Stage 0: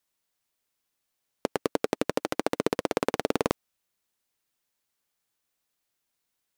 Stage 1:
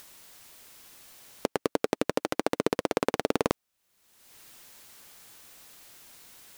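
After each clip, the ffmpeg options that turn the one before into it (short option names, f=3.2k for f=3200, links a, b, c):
-af "acompressor=mode=upward:threshold=-29dB:ratio=2.5"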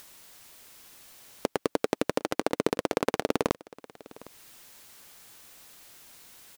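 -af "aecho=1:1:757:0.0841"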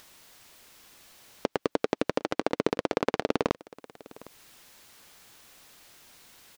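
-filter_complex "[0:a]acrossover=split=6300[a][b];[b]acompressor=threshold=-54dB:ratio=4:attack=1:release=60[c];[a][c]amix=inputs=2:normalize=0"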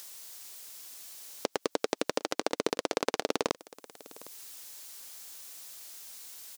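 -af "bass=f=250:g=-9,treble=f=4k:g=13,volume=-2.5dB"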